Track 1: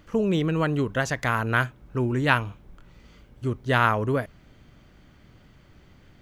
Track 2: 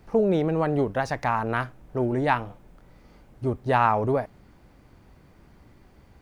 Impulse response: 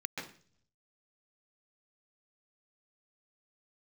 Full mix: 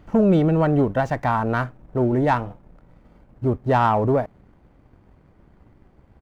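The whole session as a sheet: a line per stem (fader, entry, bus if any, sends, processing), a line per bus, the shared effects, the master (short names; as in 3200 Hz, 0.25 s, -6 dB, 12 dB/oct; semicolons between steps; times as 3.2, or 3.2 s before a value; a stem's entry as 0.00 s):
+2.0 dB, 0.00 s, no send, auto duck -15 dB, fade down 1.90 s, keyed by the second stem
+1.5 dB, 2.7 ms, polarity flipped, no send, median filter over 9 samples; sample leveller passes 1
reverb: off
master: high shelf 2000 Hz -9 dB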